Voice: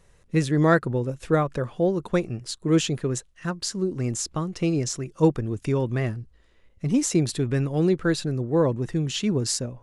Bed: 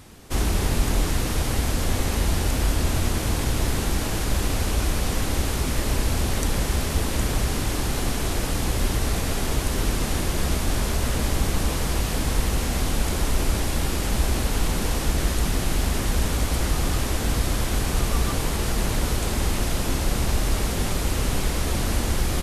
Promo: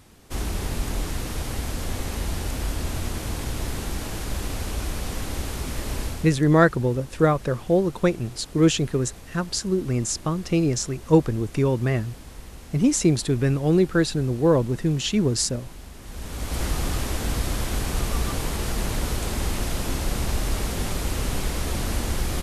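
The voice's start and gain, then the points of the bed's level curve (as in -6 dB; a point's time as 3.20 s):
5.90 s, +2.5 dB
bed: 6.05 s -5.5 dB
6.44 s -18.5 dB
15.98 s -18.5 dB
16.61 s -2.5 dB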